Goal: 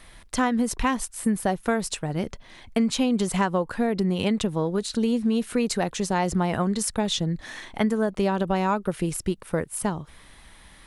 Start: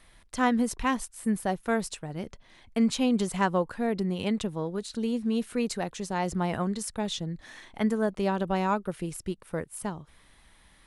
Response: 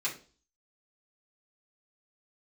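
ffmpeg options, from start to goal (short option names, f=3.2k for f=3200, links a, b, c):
-af "acompressor=threshold=-28dB:ratio=5,volume=8.5dB"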